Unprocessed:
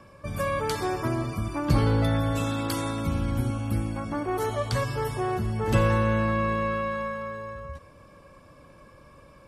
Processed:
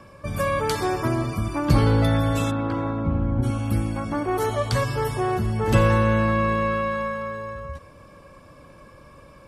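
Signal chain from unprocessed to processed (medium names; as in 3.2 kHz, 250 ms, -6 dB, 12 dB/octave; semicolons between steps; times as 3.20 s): 2.50–3.42 s: low-pass 1.7 kHz -> 1 kHz 12 dB/octave; trim +4 dB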